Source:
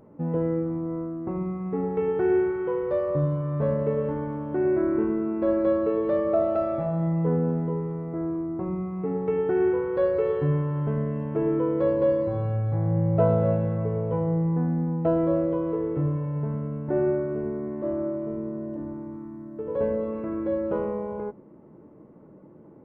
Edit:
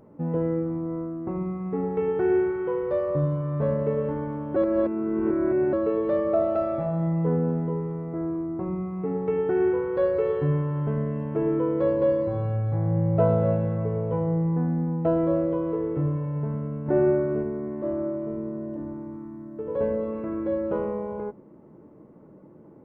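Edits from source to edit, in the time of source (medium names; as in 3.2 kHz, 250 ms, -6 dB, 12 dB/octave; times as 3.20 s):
4.56–5.73 s: reverse
16.86–17.43 s: gain +3 dB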